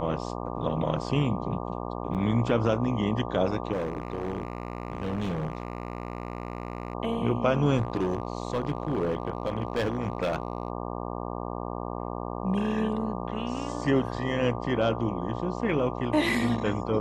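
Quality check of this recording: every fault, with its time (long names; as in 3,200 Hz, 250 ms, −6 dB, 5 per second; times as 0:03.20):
mains buzz 60 Hz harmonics 20 −34 dBFS
0:02.14–0:02.15: drop-out 8.1 ms
0:03.73–0:06.95: clipping −26 dBFS
0:07.78–0:10.70: clipping −22 dBFS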